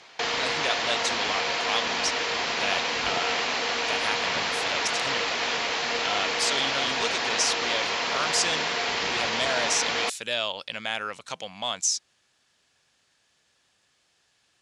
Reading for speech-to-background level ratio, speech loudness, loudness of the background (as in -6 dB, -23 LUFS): -4.0 dB, -30.0 LUFS, -26.0 LUFS